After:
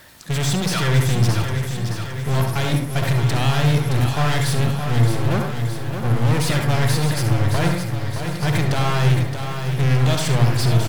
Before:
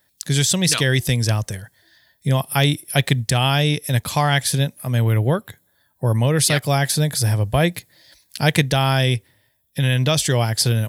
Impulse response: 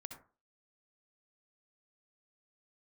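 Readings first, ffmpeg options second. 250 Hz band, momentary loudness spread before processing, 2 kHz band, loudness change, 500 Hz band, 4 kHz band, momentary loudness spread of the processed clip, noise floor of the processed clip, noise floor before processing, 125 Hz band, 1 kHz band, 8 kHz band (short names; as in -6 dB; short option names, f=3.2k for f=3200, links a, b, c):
0.0 dB, 7 LU, -2.5 dB, -1.0 dB, -2.5 dB, -5.0 dB, 7 LU, -27 dBFS, -64 dBFS, +1.5 dB, -1.0 dB, -7.0 dB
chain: -filter_complex "[0:a]aeval=exprs='val(0)+0.5*0.0631*sgn(val(0))':c=same,agate=range=-12dB:threshold=-20dB:ratio=16:detection=peak,asplit=2[a][b];[b]acrusher=bits=5:mix=0:aa=0.000001,volume=-5dB[c];[a][c]amix=inputs=2:normalize=0,aeval=exprs='(tanh(10*val(0)+0.35)-tanh(0.35))/10':c=same,aemphasis=mode=reproduction:type=cd,aecho=1:1:619|1238|1857|2476|3095|3714|4333|4952:0.422|0.253|0.152|0.0911|0.0547|0.0328|0.0197|0.0118[d];[1:a]atrim=start_sample=2205[e];[d][e]afir=irnorm=-1:irlink=0,volume=6.5dB"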